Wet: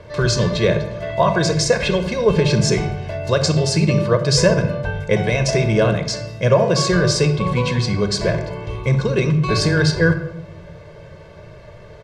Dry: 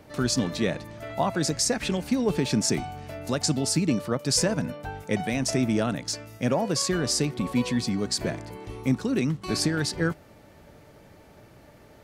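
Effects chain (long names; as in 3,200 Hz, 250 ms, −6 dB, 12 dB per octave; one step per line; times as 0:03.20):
low-pass filter 4,700 Hz 12 dB per octave
comb filter 1.9 ms, depth 95%
on a send: convolution reverb RT60 0.80 s, pre-delay 3 ms, DRR 8 dB
on the sum: level +7 dB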